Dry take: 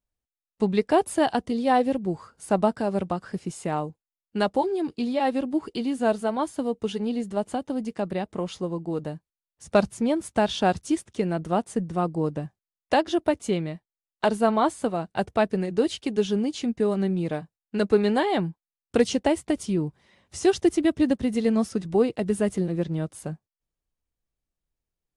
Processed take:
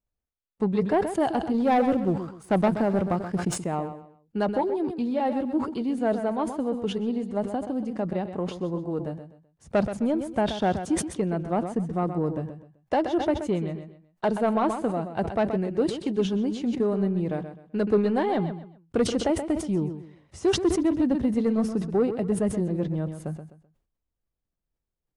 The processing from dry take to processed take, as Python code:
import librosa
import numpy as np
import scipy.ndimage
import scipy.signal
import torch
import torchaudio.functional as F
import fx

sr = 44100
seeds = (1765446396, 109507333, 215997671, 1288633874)

p1 = fx.high_shelf(x, sr, hz=2200.0, db=-12.0)
p2 = fx.leveller(p1, sr, passes=1, at=(1.54, 3.56))
p3 = 10.0 ** (-14.5 / 20.0) * np.tanh(p2 / 10.0 ** (-14.5 / 20.0))
p4 = p3 + fx.echo_feedback(p3, sr, ms=128, feedback_pct=28, wet_db=-10.5, dry=0)
y = fx.sustainer(p4, sr, db_per_s=100.0)